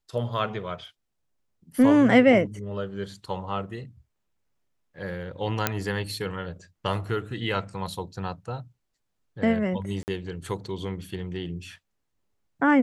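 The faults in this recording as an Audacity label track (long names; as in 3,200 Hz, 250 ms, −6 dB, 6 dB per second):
5.670000	5.670000	click −5 dBFS
10.030000	10.080000	drop-out 49 ms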